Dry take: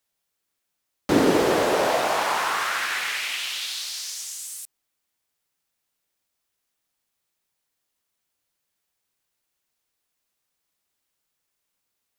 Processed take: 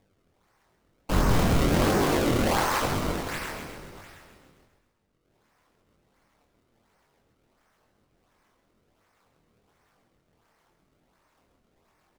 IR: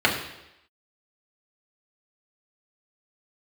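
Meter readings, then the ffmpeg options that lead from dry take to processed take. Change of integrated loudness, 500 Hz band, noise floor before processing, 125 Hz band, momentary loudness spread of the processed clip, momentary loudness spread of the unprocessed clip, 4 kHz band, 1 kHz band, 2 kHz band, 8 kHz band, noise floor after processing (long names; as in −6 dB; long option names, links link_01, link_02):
−1.5 dB, −4.0 dB, −79 dBFS, +10.5 dB, 14 LU, 14 LU, −6.5 dB, −3.5 dB, −6.0 dB, −5.5 dB, −71 dBFS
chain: -filter_complex "[0:a]equalizer=frequency=1300:width_type=o:width=0.77:gain=4,acompressor=mode=upward:threshold=-40dB:ratio=2.5,highpass=frequency=250:width_type=q:width=0.5412,highpass=frequency=250:width_type=q:width=1.307,lowpass=frequency=2600:width_type=q:width=0.5176,lowpass=frequency=2600:width_type=q:width=0.7071,lowpass=frequency=2600:width_type=q:width=1.932,afreqshift=-310,acrusher=samples=30:mix=1:aa=0.000001:lfo=1:lforange=48:lforate=1.4,asplit=8[link_01][link_02][link_03][link_04][link_05][link_06][link_07][link_08];[link_02]adelay=132,afreqshift=-36,volume=-6.5dB[link_09];[link_03]adelay=264,afreqshift=-72,volume=-11.5dB[link_10];[link_04]adelay=396,afreqshift=-108,volume=-16.6dB[link_11];[link_05]adelay=528,afreqshift=-144,volume=-21.6dB[link_12];[link_06]adelay=660,afreqshift=-180,volume=-26.6dB[link_13];[link_07]adelay=792,afreqshift=-216,volume=-31.7dB[link_14];[link_08]adelay=924,afreqshift=-252,volume=-36.7dB[link_15];[link_01][link_09][link_10][link_11][link_12][link_13][link_14][link_15]amix=inputs=8:normalize=0,flanger=delay=20:depth=6.7:speed=1"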